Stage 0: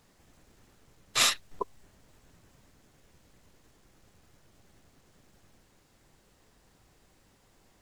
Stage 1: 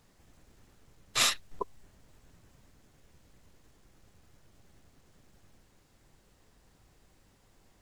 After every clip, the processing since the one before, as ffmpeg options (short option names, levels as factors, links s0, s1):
-af "lowshelf=f=120:g=5,volume=0.794"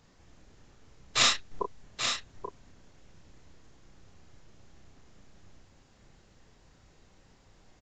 -filter_complex "[0:a]asplit=2[s0][s1];[s1]adelay=32,volume=0.562[s2];[s0][s2]amix=inputs=2:normalize=0,aresample=16000,aresample=44100,aecho=1:1:833:0.447,volume=1.26"